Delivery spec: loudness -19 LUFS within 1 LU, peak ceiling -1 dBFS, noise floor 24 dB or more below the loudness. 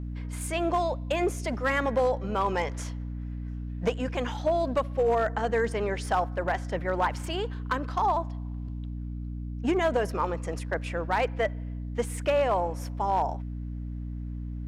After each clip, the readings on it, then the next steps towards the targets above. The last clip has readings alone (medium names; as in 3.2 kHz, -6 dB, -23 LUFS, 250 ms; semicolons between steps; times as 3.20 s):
clipped samples 0.5%; clipping level -18.0 dBFS; hum 60 Hz; highest harmonic 300 Hz; hum level -32 dBFS; loudness -29.5 LUFS; peak level -18.0 dBFS; loudness target -19.0 LUFS
-> clip repair -18 dBFS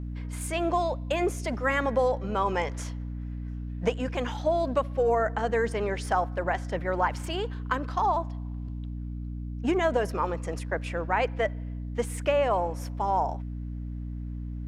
clipped samples 0.0%; hum 60 Hz; highest harmonic 300 Hz; hum level -32 dBFS
-> de-hum 60 Hz, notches 5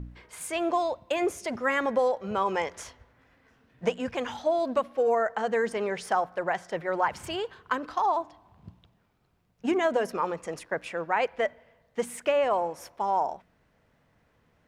hum not found; loudness -28.5 LUFS; peak level -12.5 dBFS; loudness target -19.0 LUFS
-> trim +9.5 dB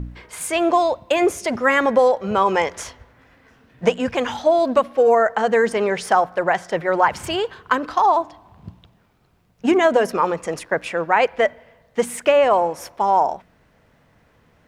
loudness -19.0 LUFS; peak level -3.0 dBFS; noise floor -58 dBFS